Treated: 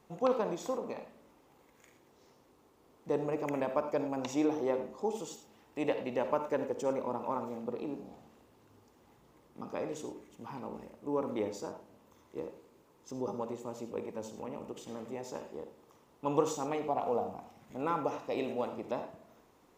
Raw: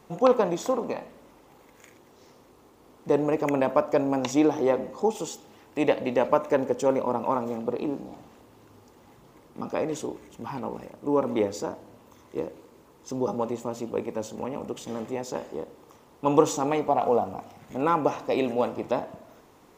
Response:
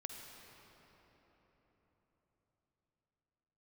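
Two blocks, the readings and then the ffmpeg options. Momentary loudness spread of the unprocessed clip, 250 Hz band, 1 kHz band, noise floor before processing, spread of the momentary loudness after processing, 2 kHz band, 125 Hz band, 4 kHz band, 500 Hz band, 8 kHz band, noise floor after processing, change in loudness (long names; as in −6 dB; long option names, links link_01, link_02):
14 LU, −9.0 dB, −9.0 dB, −56 dBFS, 15 LU, −9.0 dB, −9.0 dB, −9.0 dB, −9.0 dB, −9.0 dB, −65 dBFS, −9.0 dB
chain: -filter_complex "[1:a]atrim=start_sample=2205,afade=type=out:start_time=0.16:duration=0.01,atrim=end_sample=7497[link_01];[0:a][link_01]afir=irnorm=-1:irlink=0,volume=-5dB"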